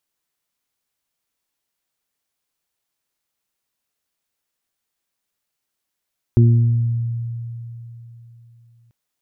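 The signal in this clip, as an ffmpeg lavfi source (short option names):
-f lavfi -i "aevalsrc='0.398*pow(10,-3*t/3.47)*sin(2*PI*117*t)+0.158*pow(10,-3*t/1.23)*sin(2*PI*234*t)+0.112*pow(10,-3*t/0.71)*sin(2*PI*351*t)':d=2.54:s=44100"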